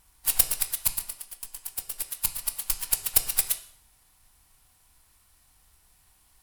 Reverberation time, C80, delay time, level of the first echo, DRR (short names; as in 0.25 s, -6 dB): 0.60 s, 15.5 dB, none, none, 8.0 dB